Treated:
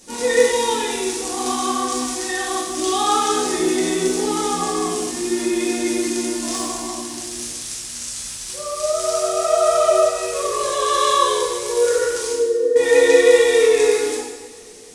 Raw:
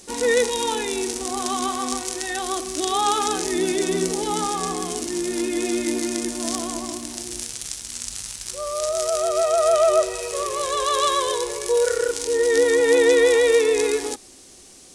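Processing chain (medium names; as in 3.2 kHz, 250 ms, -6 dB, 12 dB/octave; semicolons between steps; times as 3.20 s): 12.32–12.76 s: resonances exaggerated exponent 3; two-slope reverb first 0.98 s, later 3.2 s, from -19 dB, DRR -6.5 dB; trim -4.5 dB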